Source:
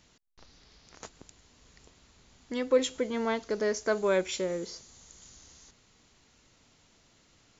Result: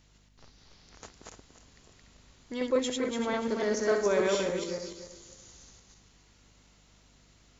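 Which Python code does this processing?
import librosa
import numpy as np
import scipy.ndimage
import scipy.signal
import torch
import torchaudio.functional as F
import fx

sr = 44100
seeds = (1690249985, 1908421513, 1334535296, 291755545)

y = fx.reverse_delay_fb(x, sr, ms=145, feedback_pct=50, wet_db=-0.5)
y = fx.room_flutter(y, sr, wall_m=10.6, rt60_s=0.48, at=(3.44, 4.52), fade=0.02)
y = fx.add_hum(y, sr, base_hz=50, snr_db=30)
y = y * librosa.db_to_amplitude(-3.0)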